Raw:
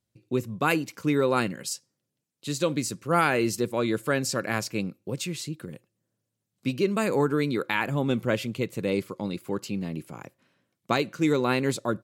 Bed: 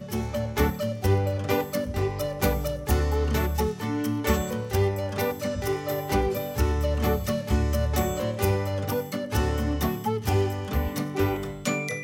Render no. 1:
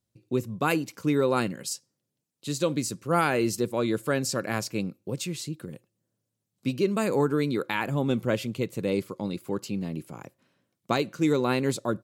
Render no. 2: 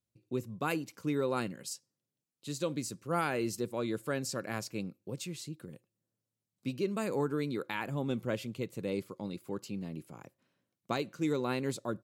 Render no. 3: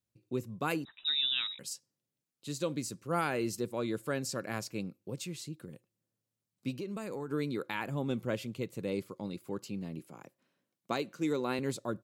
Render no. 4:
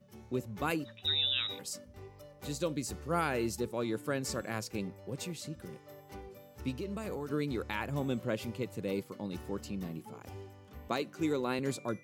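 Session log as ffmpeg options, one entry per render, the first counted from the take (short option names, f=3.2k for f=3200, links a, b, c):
-af "equalizer=f=2k:t=o:w=1.5:g=-3.5"
-af "volume=-8dB"
-filter_complex "[0:a]asettb=1/sr,asplit=3[a][b][c];[a]atrim=end=0.854[d];[b]atrim=start=0.85:end=1.59,asetpts=PTS-STARTPTS,afade=t=in:d=0.004:c=qsin,afade=t=out:st=0.736:d=0.004:c=qsin,lowpass=f=3.4k:t=q:w=0.5098,lowpass=f=3.4k:t=q:w=0.6013,lowpass=f=3.4k:t=q:w=0.9,lowpass=f=3.4k:t=q:w=2.563,afreqshift=-4000[e];[c]atrim=start=1.586[f];[d][e]acrossfade=d=0.004:c1=hsin:c2=qsin[g];[g][f]acrossfade=d=0.004:c1=qsin:c2=hsin,asettb=1/sr,asplit=3[h][i][j];[h]atrim=end=6.754[k];[i]atrim=start=6.75:end=7.31,asetpts=PTS-STARTPTS,afade=t=in:d=0.004:c=qsin,afade=t=out:st=0.556:d=0.004:c=qsin,acompressor=threshold=-35dB:ratio=6:attack=3.2:release=140:knee=1:detection=peak[l];[j]atrim=start=7.306[m];[k][l]acrossfade=d=0.004:c1=hsin:c2=qsin[n];[n][m]acrossfade=d=0.004:c1=qsin:c2=hsin,asettb=1/sr,asplit=3[o][p][q];[o]atrim=end=9.994[r];[p]atrim=start=9.99:end=11.59,asetpts=PTS-STARTPTS,afade=t=in:d=0.004:c=qsin,afade=t=out:st=1.596:d=0.004:c=qsin,highpass=160[s];[q]atrim=start=11.586[t];[r][s]acrossfade=d=0.004:c1=hsin:c2=qsin[u];[u][t]acrossfade=d=0.004:c1=qsin:c2=hsin"
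-filter_complex "[1:a]volume=-23.5dB[a];[0:a][a]amix=inputs=2:normalize=0"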